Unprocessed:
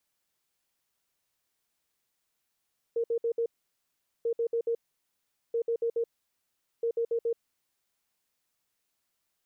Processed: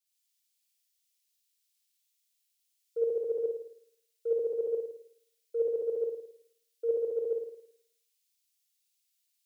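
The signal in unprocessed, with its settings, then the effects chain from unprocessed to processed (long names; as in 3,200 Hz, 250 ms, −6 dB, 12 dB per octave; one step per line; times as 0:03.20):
beeps in groups sine 464 Hz, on 0.08 s, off 0.06 s, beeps 4, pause 0.79 s, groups 4, −25 dBFS
low-shelf EQ 240 Hz −6 dB
on a send: flutter between parallel walls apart 9.3 metres, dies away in 1.1 s
on the sum: multiband upward and downward expander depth 100%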